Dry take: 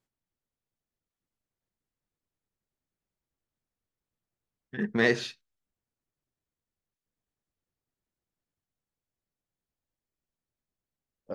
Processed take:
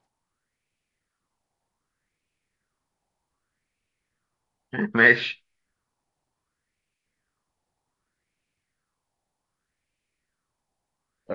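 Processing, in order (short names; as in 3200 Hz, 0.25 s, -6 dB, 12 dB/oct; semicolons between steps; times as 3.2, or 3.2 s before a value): nonlinear frequency compression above 2700 Hz 1.5:1; in parallel at +2 dB: compressor, threshold -36 dBFS, peak gain reduction 16.5 dB; on the sum: LFO bell 0.65 Hz 790–2500 Hz +14 dB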